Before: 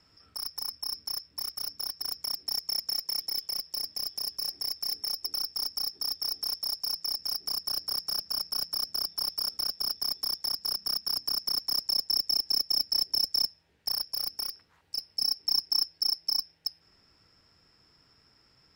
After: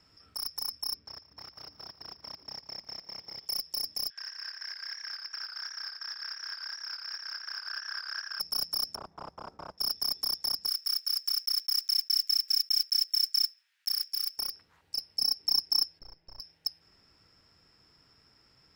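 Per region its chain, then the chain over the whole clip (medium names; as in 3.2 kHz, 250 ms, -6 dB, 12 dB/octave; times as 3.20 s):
0.94–3.46 s: distance through air 220 m + feedback delay 147 ms, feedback 57%, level -16 dB
4.10–8.40 s: resonant high-pass 1.6 kHz, resonance Q 13 + distance through air 180 m + modulated delay 85 ms, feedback 33%, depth 64 cents, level -4.5 dB
8.95–9.78 s: resonant low-pass 990 Hz, resonance Q 2.2 + waveshaping leveller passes 1
10.67–14.38 s: block-companded coder 5-bit + high-pass 1.4 kHz 24 dB/octave
15.99–16.40 s: partial rectifier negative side -3 dB + compression 3:1, threshold -31 dBFS + distance through air 370 m
whole clip: none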